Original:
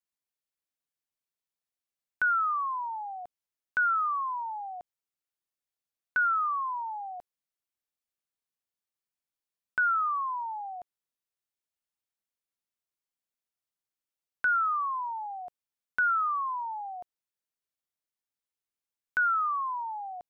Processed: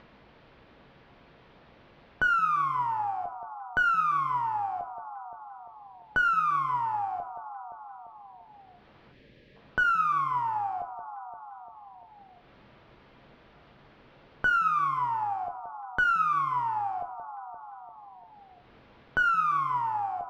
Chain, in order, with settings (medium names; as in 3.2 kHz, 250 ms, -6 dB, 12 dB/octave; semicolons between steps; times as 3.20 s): on a send: echo whose repeats swap between lows and highs 173 ms, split 1.4 kHz, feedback 55%, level -13 dB; on the sum: time-frequency box 9.12–9.56 s, 620–1600 Hz -17 dB; Bessel low-pass 2.3 kHz, order 8; upward compressor, threshold -32 dBFS; in parallel at -3 dB: one-sided clip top -37.5 dBFS; on the sum: tilt shelf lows +5.5 dB; two-slope reverb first 0.52 s, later 1.7 s, DRR 7 dB